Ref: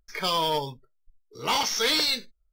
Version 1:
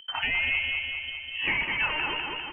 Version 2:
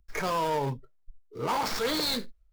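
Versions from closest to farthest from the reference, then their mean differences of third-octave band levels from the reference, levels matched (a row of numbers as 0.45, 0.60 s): 2, 1; 6.0, 18.0 dB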